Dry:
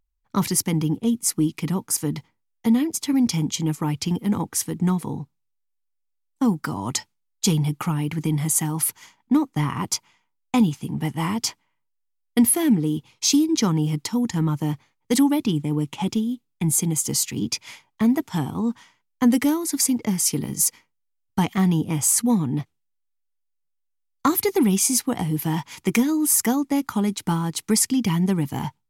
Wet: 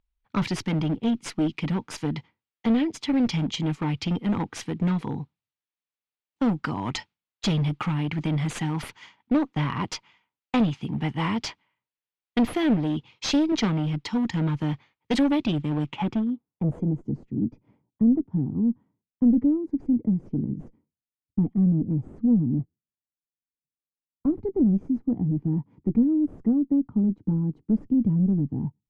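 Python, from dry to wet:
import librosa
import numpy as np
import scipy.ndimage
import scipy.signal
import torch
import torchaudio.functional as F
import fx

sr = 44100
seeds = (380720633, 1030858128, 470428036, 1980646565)

y = fx.clip_asym(x, sr, top_db=-20.5, bottom_db=-12.0)
y = fx.filter_sweep_lowpass(y, sr, from_hz=3200.0, to_hz=280.0, start_s=15.81, end_s=17.08, q=1.3)
y = fx.band_widen(y, sr, depth_pct=40, at=(13.52, 14.06))
y = y * librosa.db_to_amplitude(-1.0)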